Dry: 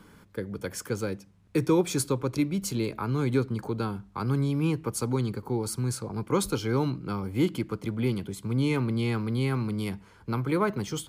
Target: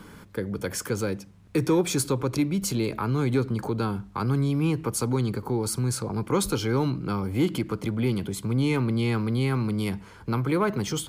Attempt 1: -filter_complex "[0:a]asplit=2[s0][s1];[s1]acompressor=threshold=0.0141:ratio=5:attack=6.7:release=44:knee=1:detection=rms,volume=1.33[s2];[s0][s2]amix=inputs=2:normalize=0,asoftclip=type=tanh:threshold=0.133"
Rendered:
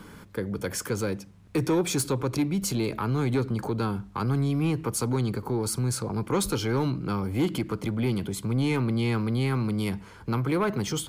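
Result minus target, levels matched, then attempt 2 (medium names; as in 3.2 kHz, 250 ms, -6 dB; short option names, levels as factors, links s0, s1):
saturation: distortion +10 dB
-filter_complex "[0:a]asplit=2[s0][s1];[s1]acompressor=threshold=0.0141:ratio=5:attack=6.7:release=44:knee=1:detection=rms,volume=1.33[s2];[s0][s2]amix=inputs=2:normalize=0,asoftclip=type=tanh:threshold=0.282"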